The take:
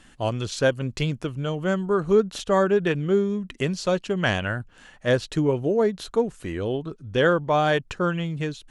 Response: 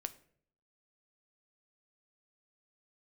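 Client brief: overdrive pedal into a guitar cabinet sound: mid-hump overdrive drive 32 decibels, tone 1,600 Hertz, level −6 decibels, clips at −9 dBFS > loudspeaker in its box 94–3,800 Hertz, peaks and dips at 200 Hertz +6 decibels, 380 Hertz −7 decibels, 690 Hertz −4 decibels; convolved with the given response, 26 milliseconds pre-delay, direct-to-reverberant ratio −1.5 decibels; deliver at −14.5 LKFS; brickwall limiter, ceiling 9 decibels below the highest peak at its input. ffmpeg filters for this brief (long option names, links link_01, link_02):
-filter_complex "[0:a]alimiter=limit=-17dB:level=0:latency=1,asplit=2[link_01][link_02];[1:a]atrim=start_sample=2205,adelay=26[link_03];[link_02][link_03]afir=irnorm=-1:irlink=0,volume=3.5dB[link_04];[link_01][link_04]amix=inputs=2:normalize=0,asplit=2[link_05][link_06];[link_06]highpass=frequency=720:poles=1,volume=32dB,asoftclip=type=tanh:threshold=-9dB[link_07];[link_05][link_07]amix=inputs=2:normalize=0,lowpass=frequency=1600:poles=1,volume=-6dB,highpass=94,equalizer=frequency=200:width_type=q:width=4:gain=6,equalizer=frequency=380:width_type=q:width=4:gain=-7,equalizer=frequency=690:width_type=q:width=4:gain=-4,lowpass=frequency=3800:width=0.5412,lowpass=frequency=3800:width=1.3066,volume=3.5dB"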